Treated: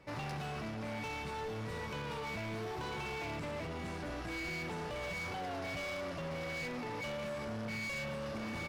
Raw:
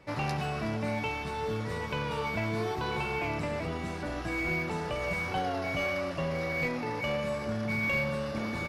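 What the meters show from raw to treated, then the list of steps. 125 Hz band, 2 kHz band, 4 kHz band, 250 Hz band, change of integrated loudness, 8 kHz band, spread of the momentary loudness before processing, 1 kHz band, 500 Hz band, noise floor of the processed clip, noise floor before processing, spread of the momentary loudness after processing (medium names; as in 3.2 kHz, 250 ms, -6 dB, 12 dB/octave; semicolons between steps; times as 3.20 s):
-8.0 dB, -8.0 dB, -5.0 dB, -8.0 dB, -8.0 dB, -2.5 dB, 4 LU, -7.5 dB, -8.0 dB, -42 dBFS, -36 dBFS, 2 LU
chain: peak limiter -25 dBFS, peak gain reduction 4.5 dB; overload inside the chain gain 34 dB; trim -3.5 dB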